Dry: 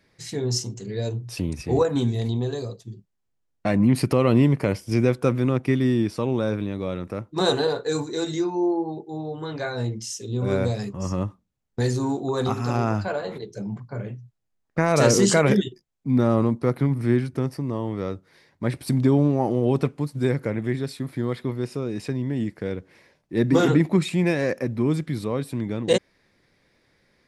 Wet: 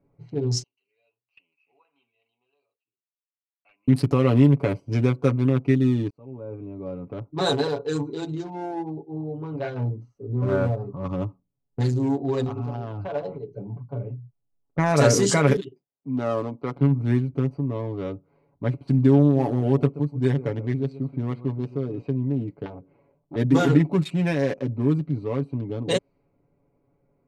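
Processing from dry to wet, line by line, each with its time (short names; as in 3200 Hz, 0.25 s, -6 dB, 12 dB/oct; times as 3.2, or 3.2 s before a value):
0.63–3.88 ladder band-pass 2900 Hz, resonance 75%
6.1–7.29 fade in
9.76–11.12 resonant high shelf 1900 Hz -12.5 dB, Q 3
12.44–13.15 compressor 12:1, threshold -24 dBFS
15.56–16.76 HPF 460 Hz 6 dB/oct
19.23–22.02 echo 0.128 s -14.5 dB
22.65–23.36 core saturation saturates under 1200 Hz
whole clip: Wiener smoothing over 25 samples; low-pass opened by the level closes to 1800 Hz, open at -18 dBFS; comb 7.1 ms, depth 73%; gain -2 dB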